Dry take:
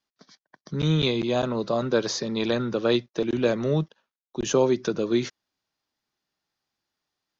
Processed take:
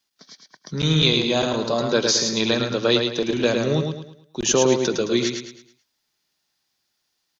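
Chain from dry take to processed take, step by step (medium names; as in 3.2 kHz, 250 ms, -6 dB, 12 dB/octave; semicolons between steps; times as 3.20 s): treble shelf 2.3 kHz +11 dB; band-stop 1.2 kHz, Q 23; feedback delay 108 ms, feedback 37%, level -5 dB; trim +1 dB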